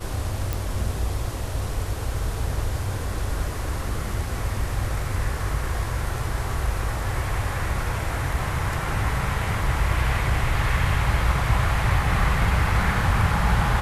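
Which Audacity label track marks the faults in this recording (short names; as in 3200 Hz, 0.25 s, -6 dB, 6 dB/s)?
0.530000	0.530000	pop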